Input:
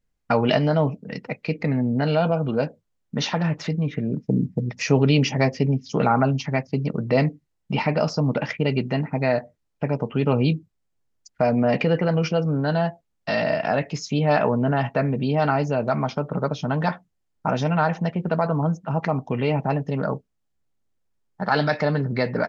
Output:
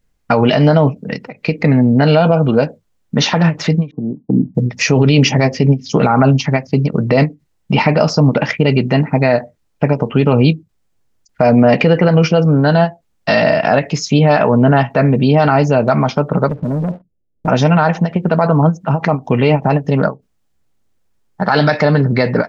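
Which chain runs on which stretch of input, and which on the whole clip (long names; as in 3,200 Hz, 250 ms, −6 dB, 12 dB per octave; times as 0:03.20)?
0:03.91–0:04.55: Chebyshev low-pass with heavy ripple 1,100 Hz, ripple 9 dB + multiband upward and downward expander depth 70%
0:16.49–0:17.48: Butterworth low-pass 580 Hz + leveller curve on the samples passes 2 + downward compressor 4 to 1, threshold −29 dBFS
whole clip: boost into a limiter +12.5 dB; every ending faded ahead of time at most 300 dB per second; level −1 dB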